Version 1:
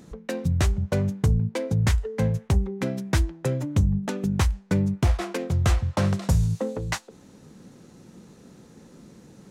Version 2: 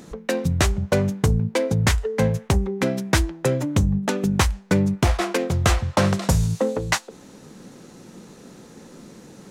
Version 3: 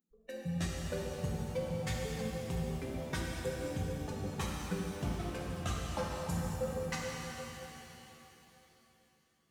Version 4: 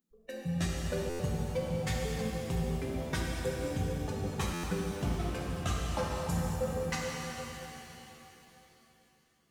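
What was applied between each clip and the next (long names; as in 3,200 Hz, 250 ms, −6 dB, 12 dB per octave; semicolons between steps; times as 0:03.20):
parametric band 77 Hz −8 dB 2.8 octaves; level +8 dB
spectral dynamics exaggerated over time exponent 2; tuned comb filter 170 Hz, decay 0.22 s, harmonics odd, mix 70%; reverb with rising layers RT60 3.4 s, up +7 semitones, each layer −8 dB, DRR −3.5 dB; level −8.5 dB
convolution reverb RT60 0.65 s, pre-delay 3 ms, DRR 14 dB; buffer that repeats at 0:01.09/0:04.53, samples 512, times 8; level +3 dB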